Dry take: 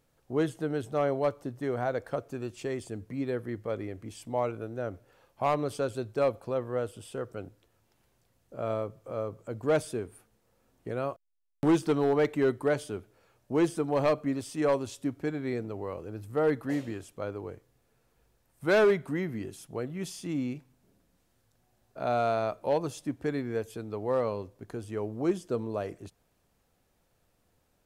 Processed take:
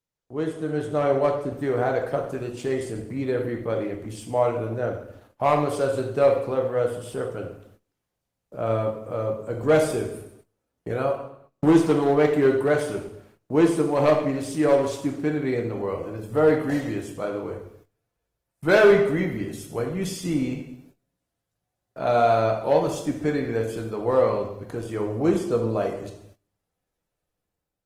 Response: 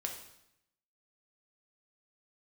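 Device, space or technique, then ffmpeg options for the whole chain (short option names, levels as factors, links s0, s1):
speakerphone in a meeting room: -filter_complex "[1:a]atrim=start_sample=2205[s0];[0:a][s0]afir=irnorm=-1:irlink=0,dynaudnorm=f=290:g=5:m=2.99,agate=range=0.126:threshold=0.00355:ratio=16:detection=peak,volume=0.794" -ar 48000 -c:a libopus -b:a 20k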